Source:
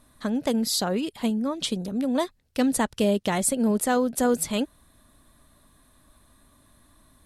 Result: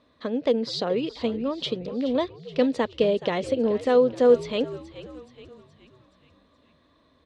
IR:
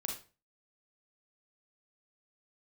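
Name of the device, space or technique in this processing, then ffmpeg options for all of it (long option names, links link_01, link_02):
frequency-shifting delay pedal into a guitar cabinet: -filter_complex "[0:a]asplit=6[link_01][link_02][link_03][link_04][link_05][link_06];[link_02]adelay=424,afreqshift=-88,volume=-14.5dB[link_07];[link_03]adelay=848,afreqshift=-176,volume=-20dB[link_08];[link_04]adelay=1272,afreqshift=-264,volume=-25.5dB[link_09];[link_05]adelay=1696,afreqshift=-352,volume=-31dB[link_10];[link_06]adelay=2120,afreqshift=-440,volume=-36.6dB[link_11];[link_01][link_07][link_08][link_09][link_10][link_11]amix=inputs=6:normalize=0,highpass=100,equalizer=frequency=120:width_type=q:width=4:gain=-10,equalizer=frequency=200:width_type=q:width=4:gain=-7,equalizer=frequency=480:width_type=q:width=4:gain=9,equalizer=frequency=820:width_type=q:width=4:gain=-5,equalizer=frequency=1500:width_type=q:width=4:gain=-6,lowpass=frequency=4400:width=0.5412,lowpass=frequency=4400:width=1.3066"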